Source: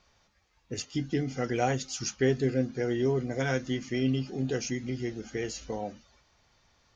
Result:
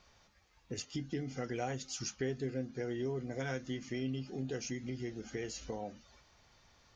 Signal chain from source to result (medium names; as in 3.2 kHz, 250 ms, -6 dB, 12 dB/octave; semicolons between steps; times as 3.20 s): compression 2:1, threshold -44 dBFS, peak gain reduction 13 dB; trim +1 dB